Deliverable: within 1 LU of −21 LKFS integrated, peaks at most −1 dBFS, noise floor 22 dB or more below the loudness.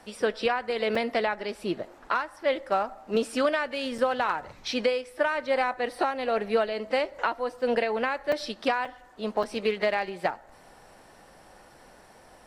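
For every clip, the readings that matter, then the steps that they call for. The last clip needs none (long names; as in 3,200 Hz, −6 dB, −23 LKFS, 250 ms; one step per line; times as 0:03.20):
number of dropouts 5; longest dropout 3.8 ms; integrated loudness −28.5 LKFS; sample peak −12.5 dBFS; target loudness −21.0 LKFS
→ repair the gap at 0:00.95/0:03.98/0:08.32/0:08.85/0:09.43, 3.8 ms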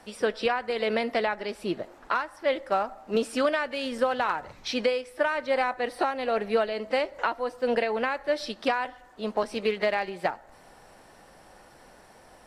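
number of dropouts 0; integrated loudness −28.0 LKFS; sample peak −12.5 dBFS; target loudness −21.0 LKFS
→ level +7 dB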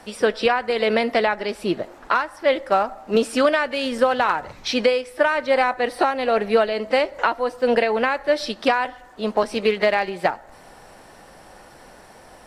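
integrated loudness −21.0 LKFS; sample peak −5.5 dBFS; background noise floor −47 dBFS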